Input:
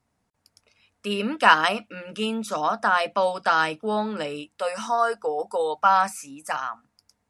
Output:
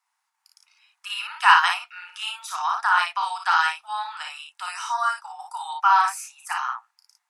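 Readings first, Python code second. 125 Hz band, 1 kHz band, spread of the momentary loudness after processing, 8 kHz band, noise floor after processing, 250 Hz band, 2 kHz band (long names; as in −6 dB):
below −40 dB, +1.5 dB, 18 LU, +2.5 dB, −78 dBFS, below −40 dB, +2.0 dB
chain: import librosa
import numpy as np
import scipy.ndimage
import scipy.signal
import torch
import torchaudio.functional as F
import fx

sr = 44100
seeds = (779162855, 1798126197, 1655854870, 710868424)

y = scipy.signal.sosfilt(scipy.signal.butter(12, 810.0, 'highpass', fs=sr, output='sos'), x)
y = fx.room_early_taps(y, sr, ms=(33, 56), db=(-6.5, -3.5))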